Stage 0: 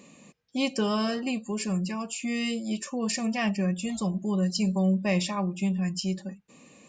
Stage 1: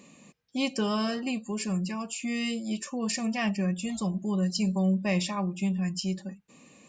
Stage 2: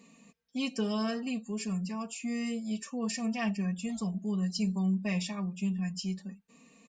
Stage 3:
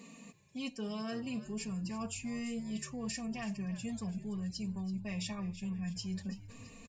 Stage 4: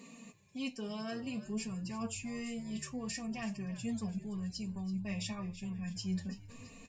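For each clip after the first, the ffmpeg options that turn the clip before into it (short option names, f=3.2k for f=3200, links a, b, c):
-af "equalizer=f=500:t=o:w=0.77:g=-2,volume=-1dB"
-af "aecho=1:1:4.4:0.84,volume=-7.5dB"
-filter_complex "[0:a]areverse,acompressor=threshold=-41dB:ratio=12,areverse,asplit=5[a][b][c][d][e];[b]adelay=332,afreqshift=-85,volume=-14.5dB[f];[c]adelay=664,afreqshift=-170,volume=-21.2dB[g];[d]adelay=996,afreqshift=-255,volume=-28dB[h];[e]adelay=1328,afreqshift=-340,volume=-34.7dB[i];[a][f][g][h][i]amix=inputs=5:normalize=0,volume=5dB"
-af "flanger=delay=7.4:depth=5.6:regen=57:speed=0.54:shape=triangular,volume=4dB"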